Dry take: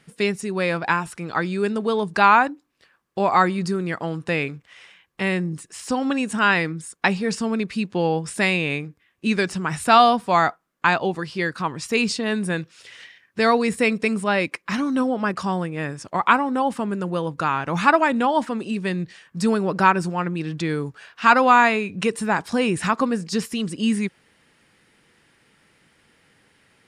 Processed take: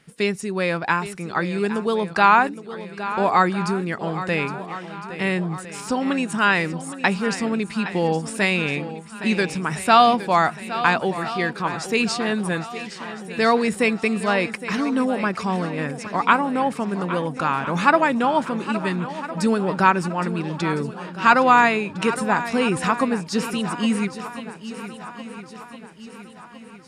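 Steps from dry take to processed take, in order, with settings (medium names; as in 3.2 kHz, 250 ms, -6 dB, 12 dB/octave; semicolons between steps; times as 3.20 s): shuffle delay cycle 1358 ms, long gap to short 1.5:1, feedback 46%, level -13 dB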